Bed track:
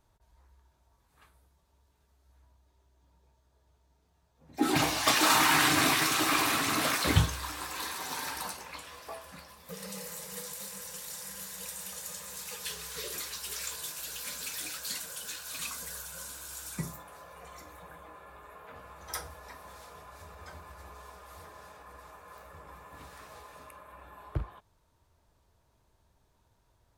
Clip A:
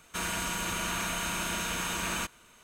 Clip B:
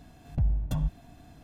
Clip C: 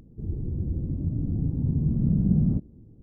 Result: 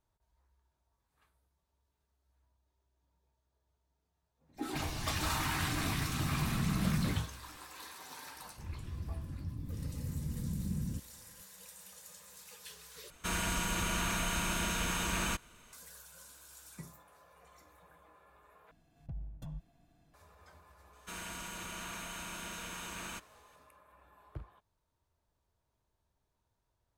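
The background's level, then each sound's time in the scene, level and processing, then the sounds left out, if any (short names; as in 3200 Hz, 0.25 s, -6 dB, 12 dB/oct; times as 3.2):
bed track -12 dB
4.56 add C -10.5 dB
8.4 add C -16.5 dB + bell 70 Hz +8 dB 0.79 oct
13.1 replace with A -2.5 dB + low shelf 140 Hz +9.5 dB
18.71 replace with B -16.5 dB + comb 6 ms, depth 32%
20.93 add A -11 dB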